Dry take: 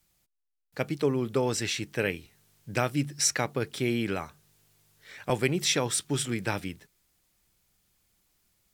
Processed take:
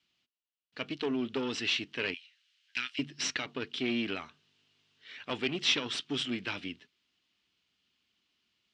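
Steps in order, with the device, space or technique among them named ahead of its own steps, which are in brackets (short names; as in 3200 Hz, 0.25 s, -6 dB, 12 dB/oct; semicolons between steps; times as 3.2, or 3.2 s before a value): 2.14–2.99 inverse Chebyshev high-pass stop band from 260 Hz, stop band 80 dB; guitar amplifier (tube stage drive 23 dB, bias 0.7; tone controls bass -9 dB, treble +14 dB; speaker cabinet 78–3800 Hz, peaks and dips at 250 Hz +10 dB, 540 Hz -7 dB, 800 Hz -6 dB, 2900 Hz +9 dB)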